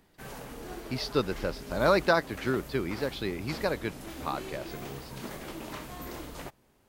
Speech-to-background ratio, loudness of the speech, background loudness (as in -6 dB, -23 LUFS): 11.5 dB, -30.5 LUFS, -42.0 LUFS